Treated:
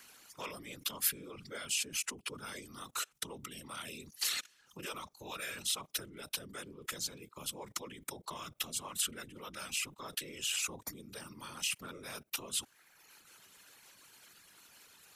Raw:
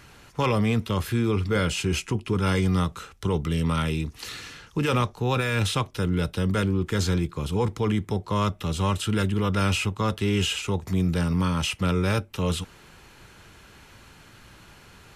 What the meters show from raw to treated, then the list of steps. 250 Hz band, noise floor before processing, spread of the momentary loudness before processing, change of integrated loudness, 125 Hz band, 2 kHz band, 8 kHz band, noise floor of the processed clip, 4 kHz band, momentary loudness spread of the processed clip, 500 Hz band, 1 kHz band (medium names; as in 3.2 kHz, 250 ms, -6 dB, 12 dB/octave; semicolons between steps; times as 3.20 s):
-25.5 dB, -51 dBFS, 5 LU, -13.0 dB, -31.5 dB, -11.5 dB, +0.5 dB, -68 dBFS, -6.5 dB, 23 LU, -21.5 dB, -16.5 dB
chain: level held to a coarse grid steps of 20 dB; reverb removal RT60 1.1 s; whisper effect; RIAA curve recording